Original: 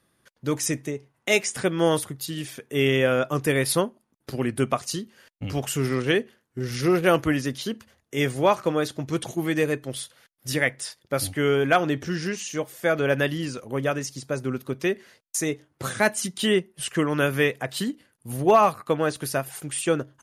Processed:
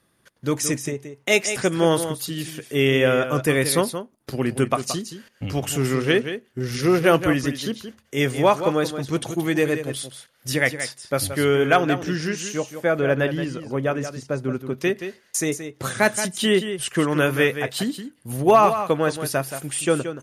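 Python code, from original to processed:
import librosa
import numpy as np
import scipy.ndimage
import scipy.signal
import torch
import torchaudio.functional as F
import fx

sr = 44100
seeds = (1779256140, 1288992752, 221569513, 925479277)

y = fx.high_shelf(x, sr, hz=2700.0, db=-9.0, at=(12.57, 14.81))
y = y + 10.0 ** (-10.0 / 20.0) * np.pad(y, (int(175 * sr / 1000.0), 0))[:len(y)]
y = y * librosa.db_to_amplitude(2.5)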